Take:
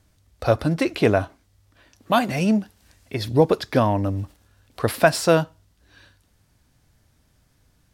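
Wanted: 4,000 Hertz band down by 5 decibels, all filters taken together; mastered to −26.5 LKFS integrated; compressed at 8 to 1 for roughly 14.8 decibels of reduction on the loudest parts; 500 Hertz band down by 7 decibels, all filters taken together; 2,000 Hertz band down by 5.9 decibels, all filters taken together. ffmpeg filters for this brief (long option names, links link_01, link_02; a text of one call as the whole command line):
ffmpeg -i in.wav -af "equalizer=frequency=500:width_type=o:gain=-8.5,equalizer=frequency=2000:width_type=o:gain=-7,equalizer=frequency=4000:width_type=o:gain=-4.5,acompressor=threshold=-32dB:ratio=8,volume=11dB" out.wav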